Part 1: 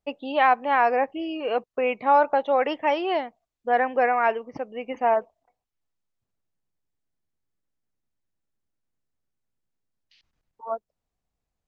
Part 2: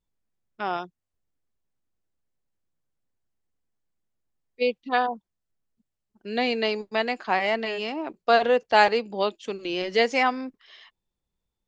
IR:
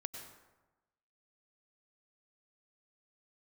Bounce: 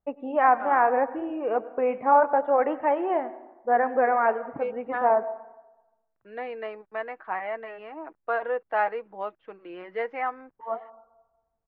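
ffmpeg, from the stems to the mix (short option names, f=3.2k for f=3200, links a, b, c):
-filter_complex "[0:a]flanger=delay=0.9:depth=8.9:regen=-72:speed=0.8:shape=triangular,volume=1.5dB,asplit=2[a][b];[b]volume=-6dB[c];[1:a]highpass=f=940:p=1,aecho=1:1:6.3:0.42,acrusher=bits=9:mix=0:aa=0.000001,volume=-3dB[d];[2:a]atrim=start_sample=2205[e];[c][e]afir=irnorm=-1:irlink=0[f];[a][d][f]amix=inputs=3:normalize=0,lowpass=f=1.7k:w=0.5412,lowpass=f=1.7k:w=1.3066"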